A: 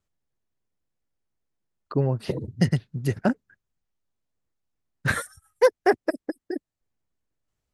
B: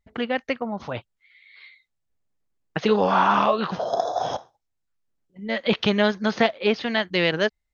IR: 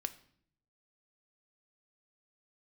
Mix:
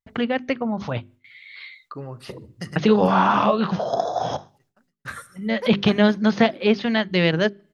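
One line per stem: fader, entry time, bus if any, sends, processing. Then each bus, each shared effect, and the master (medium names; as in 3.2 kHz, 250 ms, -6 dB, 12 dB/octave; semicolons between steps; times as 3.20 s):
-12.0 dB, 0.00 s, send -4.5 dB, echo send -23 dB, peaking EQ 1.2 kHz +10.5 dB 0.29 oct; auto duck -12 dB, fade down 0.35 s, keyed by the second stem
-1.0 dB, 0.00 s, send -19 dB, no echo send, peaking EQ 140 Hz +9.5 dB 2.1 oct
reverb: on, RT60 0.60 s, pre-delay 4 ms
echo: feedback delay 755 ms, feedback 39%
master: gate with hold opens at -53 dBFS; hum notches 50/100/150/200/250/300/350/400 Hz; tape noise reduction on one side only encoder only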